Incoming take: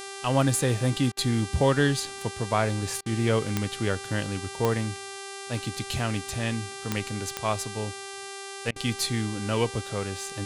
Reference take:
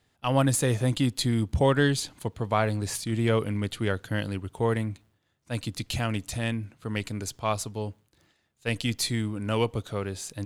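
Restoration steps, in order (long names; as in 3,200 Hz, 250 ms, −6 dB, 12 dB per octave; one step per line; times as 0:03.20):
click removal
hum removal 393.6 Hz, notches 28
repair the gap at 0:01.12/0:03.01/0:08.71, 49 ms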